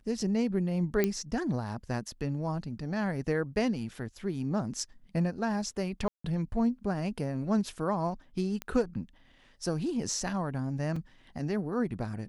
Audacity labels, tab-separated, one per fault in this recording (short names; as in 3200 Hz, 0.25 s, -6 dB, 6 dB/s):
1.040000	1.040000	pop -13 dBFS
6.080000	6.240000	gap 0.164 s
8.620000	8.620000	pop -20 dBFS
10.960000	10.960000	gap 4 ms